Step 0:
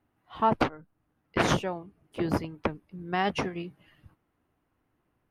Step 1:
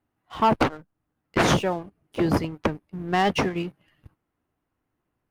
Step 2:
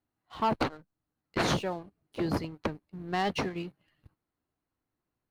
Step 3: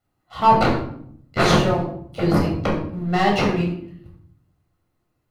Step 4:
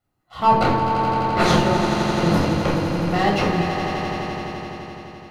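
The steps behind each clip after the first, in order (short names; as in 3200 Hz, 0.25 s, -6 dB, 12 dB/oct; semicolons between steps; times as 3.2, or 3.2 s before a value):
sample leveller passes 2
bell 4200 Hz +9 dB 0.22 oct; gain -8 dB
reverb RT60 0.65 s, pre-delay 10 ms, DRR -2.5 dB; gain +4.5 dB
swelling echo 85 ms, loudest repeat 5, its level -10 dB; gain -1.5 dB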